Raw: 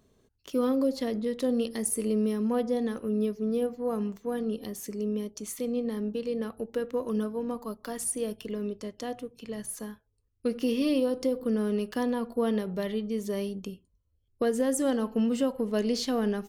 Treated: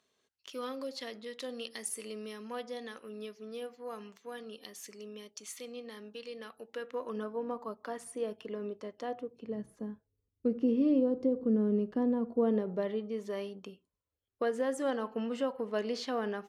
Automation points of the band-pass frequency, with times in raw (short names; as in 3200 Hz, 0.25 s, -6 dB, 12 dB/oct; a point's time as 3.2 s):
band-pass, Q 0.63
6.59 s 3000 Hz
7.39 s 910 Hz
9.05 s 910 Hz
9.69 s 240 Hz
12.17 s 240 Hz
13.32 s 1200 Hz